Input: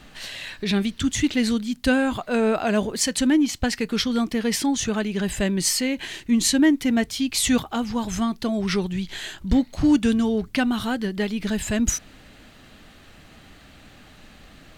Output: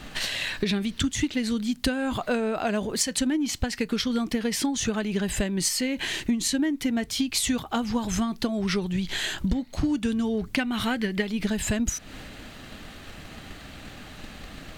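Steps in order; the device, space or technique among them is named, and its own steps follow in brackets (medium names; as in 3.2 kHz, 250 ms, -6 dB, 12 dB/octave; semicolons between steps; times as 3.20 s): 10.59–11.22 s: peaking EQ 2.2 kHz +10 dB 0.65 oct; drum-bus smash (transient shaper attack +7 dB, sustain +3 dB; compression 6:1, threshold -28 dBFS, peak gain reduction 18.5 dB; saturation -16 dBFS, distortion -27 dB); trim +5 dB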